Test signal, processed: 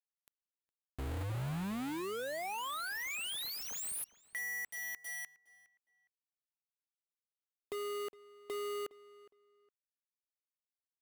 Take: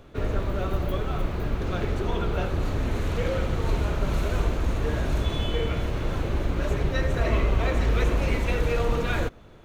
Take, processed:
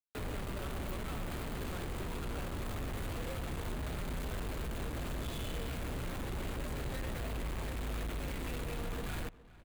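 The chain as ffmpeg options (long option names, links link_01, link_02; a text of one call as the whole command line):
ffmpeg -i in.wav -filter_complex "[0:a]acrossover=split=150[link_01][link_02];[link_01]tremolo=f=200:d=0.857[link_03];[link_02]acompressor=threshold=-36dB:ratio=8[link_04];[link_03][link_04]amix=inputs=2:normalize=0,asoftclip=type=hard:threshold=-30.5dB,acrusher=bits=5:mix=0:aa=0.000001,equalizer=frequency=5500:width_type=o:width=0.53:gain=-7,asplit=2[link_05][link_06];[link_06]adelay=412,lowpass=frequency=3400:poles=1,volume=-19dB,asplit=2[link_07][link_08];[link_08]adelay=412,lowpass=frequency=3400:poles=1,volume=0.24[link_09];[link_07][link_09]amix=inputs=2:normalize=0[link_10];[link_05][link_10]amix=inputs=2:normalize=0,volume=-5.5dB" out.wav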